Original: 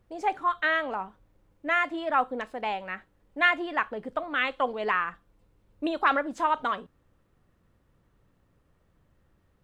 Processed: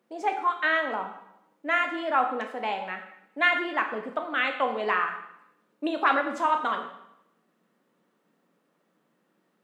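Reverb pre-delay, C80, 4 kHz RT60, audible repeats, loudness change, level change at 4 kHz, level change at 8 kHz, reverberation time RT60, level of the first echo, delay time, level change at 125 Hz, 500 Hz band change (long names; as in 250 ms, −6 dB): 7 ms, 11.0 dB, 0.75 s, no echo audible, +1.0 dB, +1.0 dB, can't be measured, 0.80 s, no echo audible, no echo audible, can't be measured, +1.0 dB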